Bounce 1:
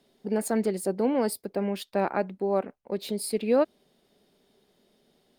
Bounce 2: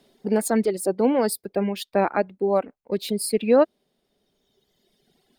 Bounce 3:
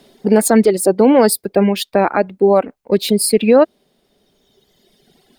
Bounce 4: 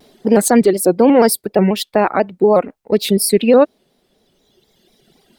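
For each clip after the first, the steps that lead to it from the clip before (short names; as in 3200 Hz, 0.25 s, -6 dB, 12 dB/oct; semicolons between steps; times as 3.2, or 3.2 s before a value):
reverb removal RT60 2 s; gain +6 dB
maximiser +12 dB; gain -1 dB
shaped vibrato square 4.1 Hz, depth 100 cents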